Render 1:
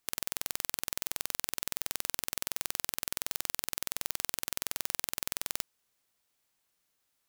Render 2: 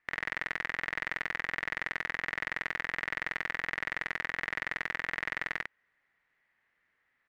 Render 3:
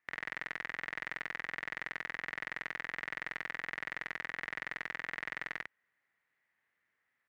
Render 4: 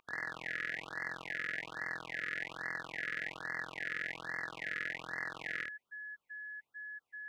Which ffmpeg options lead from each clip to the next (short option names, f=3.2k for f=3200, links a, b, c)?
-filter_complex "[0:a]lowpass=f=1.9k:t=q:w=6.9,asplit=2[a][b];[b]aecho=0:1:24|53:0.224|0.668[c];[a][c]amix=inputs=2:normalize=0"
-af "highpass=66,volume=-5.5dB"
-af "flanger=delay=19.5:depth=7.3:speed=0.64,aeval=exprs='val(0)+0.00447*sin(2*PI*1700*n/s)':c=same,afftfilt=real='re*(1-between(b*sr/1024,840*pow(3000/840,0.5+0.5*sin(2*PI*1.2*pts/sr))/1.41,840*pow(3000/840,0.5+0.5*sin(2*PI*1.2*pts/sr))*1.41))':imag='im*(1-between(b*sr/1024,840*pow(3000/840,0.5+0.5*sin(2*PI*1.2*pts/sr))/1.41,840*pow(3000/840,0.5+0.5*sin(2*PI*1.2*pts/sr))*1.41))':win_size=1024:overlap=0.75,volume=4.5dB"